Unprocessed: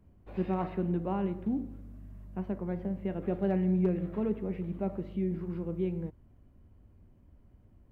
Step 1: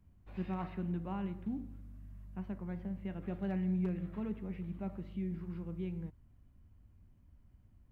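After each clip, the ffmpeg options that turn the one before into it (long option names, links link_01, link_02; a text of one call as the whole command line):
ffmpeg -i in.wav -af "equalizer=frequency=460:width=0.81:gain=-10.5,volume=-2.5dB" out.wav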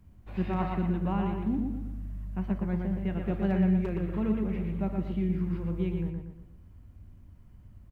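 ffmpeg -i in.wav -filter_complex "[0:a]asplit=2[link_01][link_02];[link_02]adelay=118,lowpass=frequency=3000:poles=1,volume=-3.5dB,asplit=2[link_03][link_04];[link_04]adelay=118,lowpass=frequency=3000:poles=1,volume=0.44,asplit=2[link_05][link_06];[link_06]adelay=118,lowpass=frequency=3000:poles=1,volume=0.44,asplit=2[link_07][link_08];[link_08]adelay=118,lowpass=frequency=3000:poles=1,volume=0.44,asplit=2[link_09][link_10];[link_10]adelay=118,lowpass=frequency=3000:poles=1,volume=0.44,asplit=2[link_11][link_12];[link_12]adelay=118,lowpass=frequency=3000:poles=1,volume=0.44[link_13];[link_01][link_03][link_05][link_07][link_09][link_11][link_13]amix=inputs=7:normalize=0,volume=8.5dB" out.wav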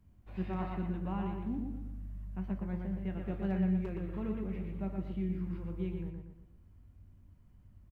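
ffmpeg -i in.wav -filter_complex "[0:a]asplit=2[link_01][link_02];[link_02]adelay=21,volume=-11dB[link_03];[link_01][link_03]amix=inputs=2:normalize=0,volume=-7.5dB" out.wav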